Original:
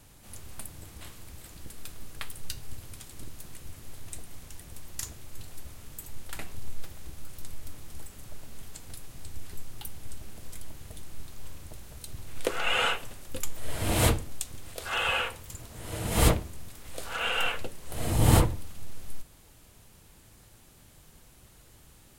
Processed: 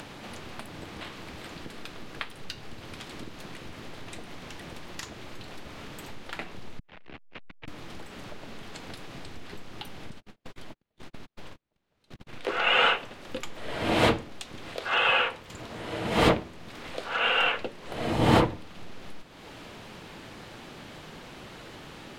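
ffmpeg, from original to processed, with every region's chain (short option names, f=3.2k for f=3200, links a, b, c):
-filter_complex "[0:a]asettb=1/sr,asplit=3[a][b][c];[a]atrim=end=6.794[d];[b]atrim=start=6.79:end=7.68,asetpts=PTS-STARTPTS,afade=t=in:d=0.004:c=qsin,afade=t=out:st=0.886:d=0.004:c=qsin,acompressor=threshold=-31dB:ratio=2:attack=3.2:release=140:knee=1:detection=peak,lowpass=f=2.5k:t=q:w=2,aeval=exprs='(tanh(178*val(0)+0.5)-tanh(0.5))/178':c=same[e];[c]atrim=start=7.676[f];[d][e]acrossfade=d=0.004:c1=hsin:c2=qsin[g];[g][f]acrossfade=d=0.004:c1=qsin:c2=hsin,asettb=1/sr,asplit=3[h][i][j];[h]atrim=end=10.104[k];[i]atrim=start=10.1:end=12.48,asetpts=PTS-STARTPTS,afade=t=in:d=0.004:c=qsin,afade=t=out:st=2.376:d=0.004:c=qsin,agate=range=-50dB:threshold=-33dB:ratio=16:release=100:detection=peak,acompressor=threshold=-32dB:ratio=6:attack=3.2:release=140:knee=1:detection=peak[l];[j]atrim=start=12.476[m];[k][l]acrossfade=d=0.004:c1=hsin:c2=qsin[n];[n][m]acrossfade=d=0.004:c1=qsin:c2=hsin,acrossover=split=160 4500:gain=0.141 1 0.0631[o][p][q];[o][p][q]amix=inputs=3:normalize=0,acompressor=mode=upward:threshold=-38dB:ratio=2.5,volume=5.5dB"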